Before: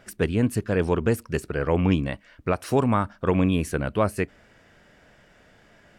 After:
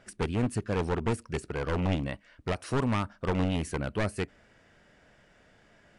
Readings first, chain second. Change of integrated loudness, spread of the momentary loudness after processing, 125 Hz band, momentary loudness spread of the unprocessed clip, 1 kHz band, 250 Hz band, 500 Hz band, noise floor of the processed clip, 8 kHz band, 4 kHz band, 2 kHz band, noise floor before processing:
-6.5 dB, 7 LU, -5.5 dB, 7 LU, -6.0 dB, -7.0 dB, -8.0 dB, -62 dBFS, -4.5 dB, -2.0 dB, -5.0 dB, -57 dBFS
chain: one-sided fold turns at -19.5 dBFS; brick-wall FIR low-pass 11000 Hz; gain -5 dB

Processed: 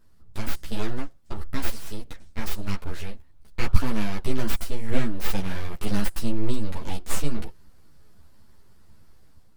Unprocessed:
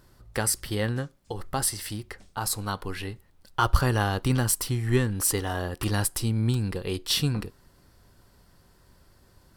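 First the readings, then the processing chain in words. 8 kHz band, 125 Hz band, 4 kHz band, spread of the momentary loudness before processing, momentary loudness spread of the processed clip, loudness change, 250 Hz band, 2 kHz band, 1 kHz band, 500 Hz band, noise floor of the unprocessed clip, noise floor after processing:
-11.5 dB, -5.5 dB, -6.5 dB, 12 LU, 12 LU, -5.0 dB, -0.5 dB, -4.0 dB, -7.0 dB, -4.0 dB, -60 dBFS, -49 dBFS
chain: full-wave rectifier; AGC gain up to 6 dB; low shelf 170 Hz +9.5 dB; ensemble effect; gain -5 dB

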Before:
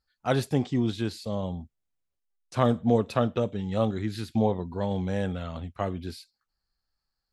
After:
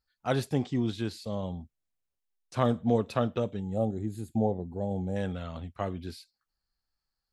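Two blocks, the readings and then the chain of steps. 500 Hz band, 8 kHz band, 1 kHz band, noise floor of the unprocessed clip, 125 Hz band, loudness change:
-3.0 dB, n/a, -3.5 dB, -84 dBFS, -3.0 dB, -3.0 dB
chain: spectral gain 3.59–5.16, 880–6400 Hz -16 dB; gain -3 dB

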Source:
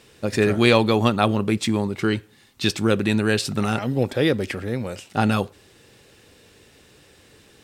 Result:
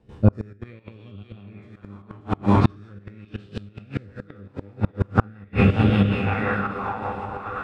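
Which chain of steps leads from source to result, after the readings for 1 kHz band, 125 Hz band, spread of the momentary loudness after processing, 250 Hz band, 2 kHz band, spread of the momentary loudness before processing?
-1.0 dB, +3.0 dB, 23 LU, -2.0 dB, -4.5 dB, 10 LU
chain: spectral trails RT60 2.45 s; RIAA curve playback; resonator 100 Hz, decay 0.57 s, harmonics all, mix 80%; band-limited delay 1.052 s, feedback 42%, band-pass 1400 Hz, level -4 dB; step gate ".xxxxx.xx.xxxx" 171 bpm -12 dB; low shelf 380 Hz +10.5 dB; rotary speaker horn 5.5 Hz; HPF 65 Hz 6 dB/oct; thinning echo 0.586 s, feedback 42%, high-pass 200 Hz, level -7 dB; flipped gate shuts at -9 dBFS, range -35 dB; LFO bell 0.42 Hz 880–3100 Hz +14 dB; gain +5 dB

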